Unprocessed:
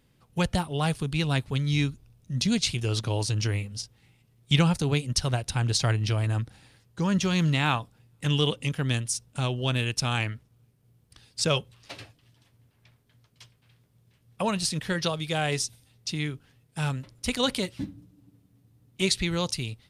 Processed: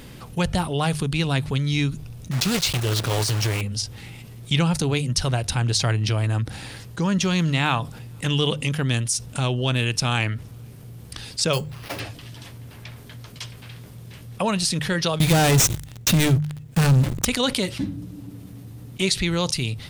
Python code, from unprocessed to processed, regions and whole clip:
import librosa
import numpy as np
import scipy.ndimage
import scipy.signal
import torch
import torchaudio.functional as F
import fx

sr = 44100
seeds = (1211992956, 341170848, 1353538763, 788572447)

y = fx.chain(x, sr, fx.block_float(bits=3),
    fx.peak_eq(hz=230.0, db=-5.0, octaves=0.39),
    fx.doppler_dist(depth_ms=0.18), at=(2.31, 3.63))
y = fx.chain(y, sr, fx.peak_eq(hz=4800.0, db=-9.5, octaves=1.3),
    fx.sample_hold(seeds[0], rate_hz=7600.0, jitter_pct=0), at=(11.53, 12.0))
y = fx.chain(y, sr, fx.median_filter(points=9),
    fx.leveller(passes=5),
    fx.bass_treble(bass_db=8, treble_db=9), at=(15.2, 17.25))
y = fx.hum_notches(y, sr, base_hz=50, count=3)
y = fx.env_flatten(y, sr, amount_pct=50)
y = y * 10.0 ** (-4.0 / 20.0)